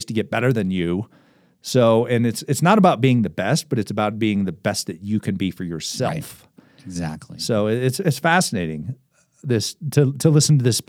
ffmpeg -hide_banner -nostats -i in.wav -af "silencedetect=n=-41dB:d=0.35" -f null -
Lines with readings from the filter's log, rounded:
silence_start: 1.13
silence_end: 1.64 | silence_duration: 0.51
silence_start: 8.93
silence_end: 9.44 | silence_duration: 0.50